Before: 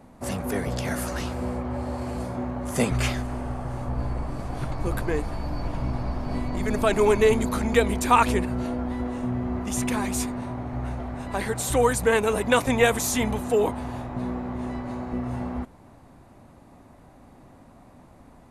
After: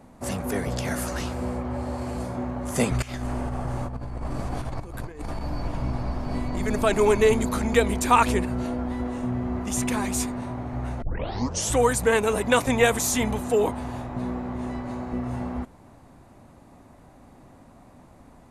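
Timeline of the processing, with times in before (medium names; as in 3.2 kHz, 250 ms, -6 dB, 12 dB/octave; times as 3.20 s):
3.02–5.41 s: compressor with a negative ratio -30 dBFS, ratio -0.5
11.02 s: tape start 0.74 s
whole clip: peaking EQ 7.1 kHz +2.5 dB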